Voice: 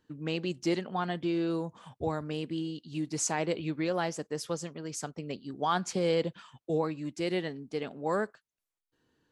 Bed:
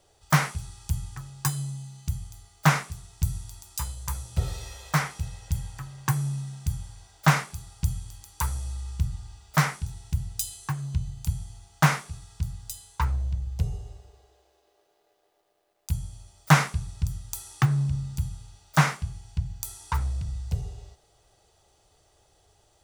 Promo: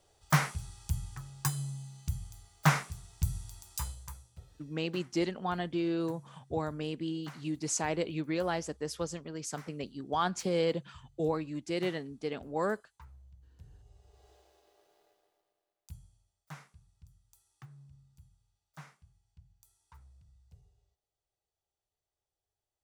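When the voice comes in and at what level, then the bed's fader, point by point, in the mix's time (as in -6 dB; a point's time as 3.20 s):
4.50 s, -1.5 dB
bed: 3.87 s -5 dB
4.47 s -28 dB
13.61 s -28 dB
14.30 s -0.5 dB
15.02 s -0.5 dB
16.40 s -30 dB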